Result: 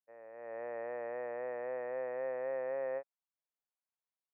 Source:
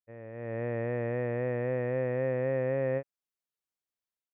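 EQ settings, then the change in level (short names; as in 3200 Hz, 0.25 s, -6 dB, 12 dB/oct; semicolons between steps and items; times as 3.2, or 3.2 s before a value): ladder band-pass 970 Hz, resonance 25%; +8.0 dB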